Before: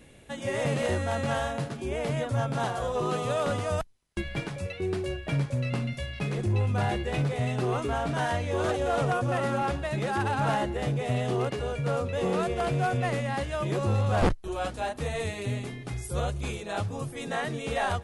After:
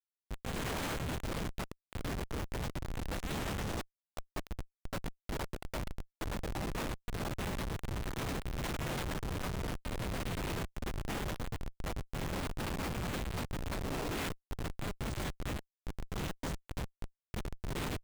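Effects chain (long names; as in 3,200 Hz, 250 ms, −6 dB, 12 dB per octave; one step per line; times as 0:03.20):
pitch vibrato 0.98 Hz 7.9 cents
gate on every frequency bin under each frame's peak −25 dB weak
hum removal 149.3 Hz, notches 2
comparator with hysteresis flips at −39 dBFS
level +10.5 dB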